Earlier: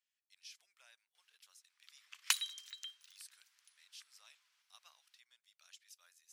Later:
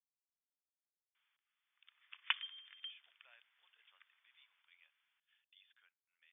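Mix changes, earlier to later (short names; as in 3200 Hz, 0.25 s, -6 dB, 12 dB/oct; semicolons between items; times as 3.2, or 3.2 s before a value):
speech: entry +2.45 s; master: add brick-wall FIR low-pass 3600 Hz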